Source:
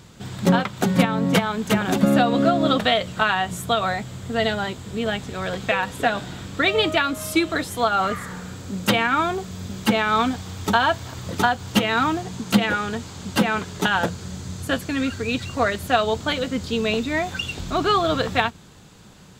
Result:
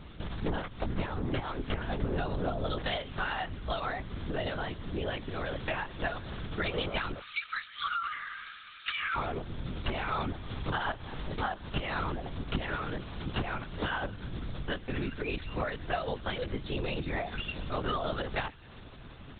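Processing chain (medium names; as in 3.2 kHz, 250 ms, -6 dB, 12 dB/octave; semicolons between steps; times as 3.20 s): 7.20–9.16 s: Chebyshev high-pass 1.1 kHz, order 10; compression 3:1, threshold -34 dBFS, peak gain reduction 16.5 dB; feedback echo behind a high-pass 130 ms, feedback 67%, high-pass 1.6 kHz, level -19.5 dB; LPC vocoder at 8 kHz whisper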